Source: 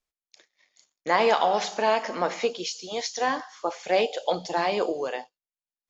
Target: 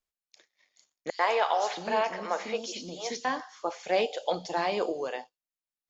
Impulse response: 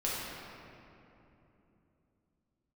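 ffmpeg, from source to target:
-filter_complex "[0:a]asettb=1/sr,asplit=3[a][b][c];[a]atrim=end=1.104[d];[b]atrim=start=1.1:end=3.25,asetpts=PTS-STARTPTS,afade=t=in:d=0.004:c=qsin,afade=t=out:st=2.146:d=0.004:c=qsin,acrossover=split=370|4500[e][f][g];[f]adelay=90[h];[e]adelay=670[i];[i][h][g]amix=inputs=3:normalize=0,atrim=end_sample=94815[j];[c]atrim=start=3.246[k];[d][j]acrossfade=d=0.004:c1=hsin:c2=qsin[l];[l][k]acrossfade=d=0.004:c1=qsin:c2=hsin,volume=-3.5dB"

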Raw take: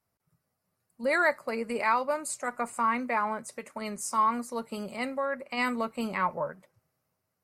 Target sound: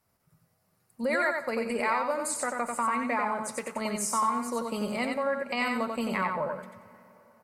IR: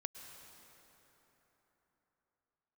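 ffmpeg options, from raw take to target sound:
-filter_complex "[0:a]acompressor=threshold=-37dB:ratio=2.5,aecho=1:1:91|182|273:0.631|0.145|0.0334,asplit=2[a][b];[1:a]atrim=start_sample=2205[c];[b][c]afir=irnorm=-1:irlink=0,volume=-9dB[d];[a][d]amix=inputs=2:normalize=0,volume=5dB"

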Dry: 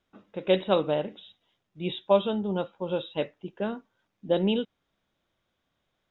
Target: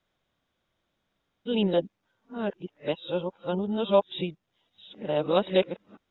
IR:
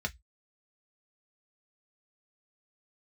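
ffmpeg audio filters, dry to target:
-af "areverse"

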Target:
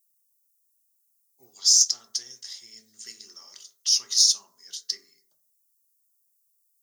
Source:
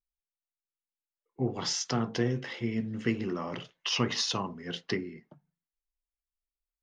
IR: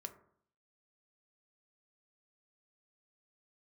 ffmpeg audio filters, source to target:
-filter_complex "[0:a]aderivative,aexciter=amount=9.3:drive=8.9:freq=4.2k[a];[1:a]atrim=start_sample=2205,afade=t=out:st=0.26:d=0.01,atrim=end_sample=11907[b];[a][b]afir=irnorm=-1:irlink=0"

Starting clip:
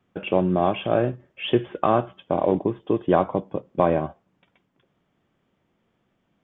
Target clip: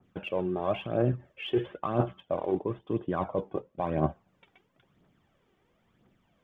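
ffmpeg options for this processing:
-af "areverse,acompressor=threshold=-27dB:ratio=6,areverse,aphaser=in_gain=1:out_gain=1:delay=2.8:decay=0.54:speed=0.99:type=triangular,adynamicequalizer=threshold=0.00447:dfrequency=2100:dqfactor=0.7:tfrequency=2100:tqfactor=0.7:attack=5:release=100:ratio=0.375:range=2.5:mode=cutabove:tftype=highshelf"

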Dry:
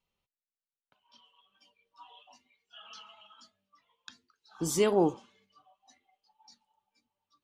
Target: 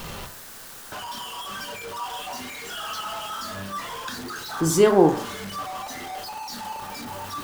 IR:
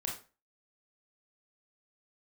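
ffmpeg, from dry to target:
-filter_complex "[0:a]aeval=exprs='val(0)+0.5*0.0158*sgn(val(0))':c=same,asplit=2[a][b];[b]highshelf=f=2.1k:t=q:w=3:g=-6.5[c];[1:a]atrim=start_sample=2205[d];[c][d]afir=irnorm=-1:irlink=0,volume=-1dB[e];[a][e]amix=inputs=2:normalize=0,volume=3dB"

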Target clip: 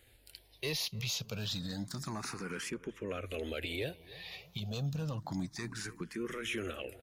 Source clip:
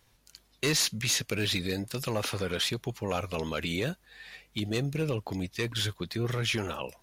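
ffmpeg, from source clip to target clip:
-filter_complex "[0:a]asettb=1/sr,asplit=3[a][b][c];[a]atrim=end=2.704[d];[b]atrim=start=2.7:end=3.26,asetpts=PTS-STARTPTS,afade=t=in:d=0.004:c=qsin,afade=t=out:st=0.556:d=0.004:c=qsin,lowpass=f=2.7k:p=1[e];[c]atrim=start=3.256[f];[d][e]acrossfade=d=0.004:c1=hsin:c2=qsin[g];[g][f]acrossfade=d=0.004:c1=qsin:c2=hsin,asplit=2[h][i];[i]acompressor=threshold=-41dB:ratio=6,volume=-2.5dB[j];[h][j]amix=inputs=2:normalize=0,alimiter=level_in=1dB:limit=-24dB:level=0:latency=1:release=210,volume=-1dB,asplit=2[k][l];[l]adelay=297,lowpass=f=1.5k:p=1,volume=-18dB,asplit=2[m][n];[n]adelay=297,lowpass=f=1.5k:p=1,volume=0.49,asplit=2[o][p];[p]adelay=297,lowpass=f=1.5k:p=1,volume=0.49,asplit=2[q][r];[r]adelay=297,lowpass=f=1.5k:p=1,volume=0.49[s];[k][m][o][q][s]amix=inputs=5:normalize=0,asplit=2[t][u];[u]afreqshift=0.29[v];[t][v]amix=inputs=2:normalize=1"

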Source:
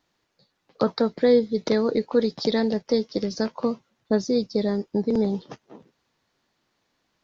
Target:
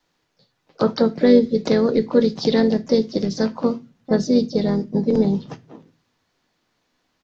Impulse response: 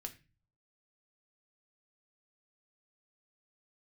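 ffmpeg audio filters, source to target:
-filter_complex "[0:a]adynamicequalizer=threshold=0.00891:dfrequency=130:dqfactor=1.2:tfrequency=130:tqfactor=1.2:attack=5:release=100:ratio=0.375:range=3.5:mode=boostabove:tftype=bell,asplit=3[a][b][c];[b]asetrate=35002,aresample=44100,atempo=1.25992,volume=-13dB[d];[c]asetrate=52444,aresample=44100,atempo=0.840896,volume=-14dB[e];[a][d][e]amix=inputs=3:normalize=0,asplit=2[f][g];[1:a]atrim=start_sample=2205[h];[g][h]afir=irnorm=-1:irlink=0,volume=3dB[i];[f][i]amix=inputs=2:normalize=0,volume=-3dB"

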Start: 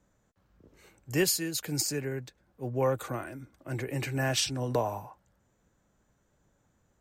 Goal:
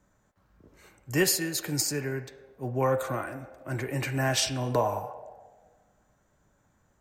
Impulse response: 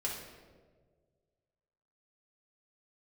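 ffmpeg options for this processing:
-filter_complex "[0:a]asplit=2[a][b];[b]acrossover=split=500 2900:gain=0.0891 1 0.178[c][d][e];[c][d][e]amix=inputs=3:normalize=0[f];[1:a]atrim=start_sample=2205,asetrate=52920,aresample=44100[g];[f][g]afir=irnorm=-1:irlink=0,volume=-3.5dB[h];[a][h]amix=inputs=2:normalize=0,volume=2dB"

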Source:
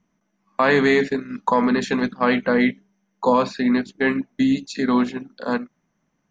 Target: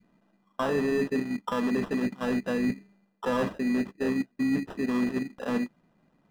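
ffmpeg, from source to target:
-filter_complex "[0:a]equalizer=f=2.3k:w=0.32:g=-9,acrusher=samples=20:mix=1:aa=0.000001,areverse,acompressor=threshold=-32dB:ratio=5,areverse,adynamicequalizer=threshold=0.00282:dfrequency=700:dqfactor=0.99:tfrequency=700:tqfactor=0.99:attack=5:release=100:ratio=0.375:range=2:mode=cutabove:tftype=bell,asplit=2[a][b];[b]highpass=f=720:p=1,volume=10dB,asoftclip=type=tanh:threshold=-24.5dB[c];[a][c]amix=inputs=2:normalize=0,lowpass=f=1k:p=1,volume=-6dB,volume=9dB"

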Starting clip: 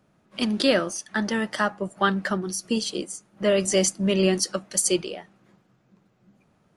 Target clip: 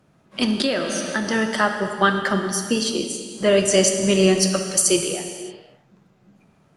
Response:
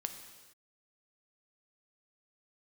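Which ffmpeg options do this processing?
-filter_complex "[1:a]atrim=start_sample=2205,asetrate=33075,aresample=44100[a];[0:a][a]afir=irnorm=-1:irlink=0,asettb=1/sr,asplit=3[b][c][d];[b]atrim=end=0.604[e];[c]atrim=start=0.6:end=1.3,asetpts=PTS-STARTPTS,afade=t=in:d=0.004:c=qsin,afade=t=out:st=0.696:d=0.004:c=qsin,acompressor=threshold=-24dB:ratio=4[f];[d]atrim=start=1.296[g];[e][f]acrossfade=d=0.004:c1=hsin:c2=qsin[h];[h][g]acrossfade=d=0.004:c1=qsin:c2=hsin,volume=4.5dB"

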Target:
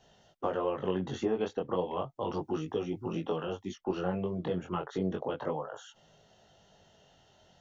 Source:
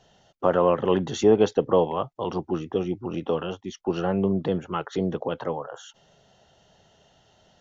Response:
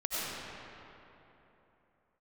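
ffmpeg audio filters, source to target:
-filter_complex "[0:a]asettb=1/sr,asplit=3[a][b][c];[a]atrim=end=2.344[d];[b]atrim=start=2.34:end=3.74,asetpts=PTS-STARTPTS,afade=t=in:d=0.004:c=qsin,afade=t=out:st=1.396:d=0.004:c=qsin,highshelf=f=5.4k:g=11.5[e];[c]atrim=start=3.736[f];[d][e]acrossfade=d=0.004:c1=hsin:c2=qsin[g];[g][f]acrossfade=d=0.004:c1=qsin:c2=hsin,acrossover=split=1100|2200[h][i][j];[h]acompressor=threshold=-26dB:ratio=4[k];[i]acompressor=threshold=-42dB:ratio=4[l];[j]acompressor=threshold=-49dB:ratio=4[m];[k][l][m]amix=inputs=3:normalize=0,flanger=delay=18.5:depth=4.1:speed=0.33"

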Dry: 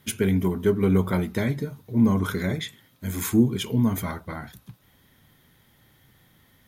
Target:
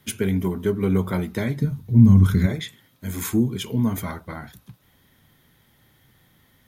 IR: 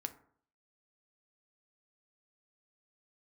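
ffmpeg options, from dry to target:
-filter_complex "[0:a]asplit=3[a][b][c];[a]afade=t=out:st=1.6:d=0.02[d];[b]asubboost=boost=10.5:cutoff=190,afade=t=in:st=1.6:d=0.02,afade=t=out:st=2.45:d=0.02[e];[c]afade=t=in:st=2.45:d=0.02[f];[d][e][f]amix=inputs=3:normalize=0,acrossover=split=190|3400[g][h][i];[h]alimiter=limit=-14dB:level=0:latency=1:release=420[j];[g][j][i]amix=inputs=3:normalize=0"

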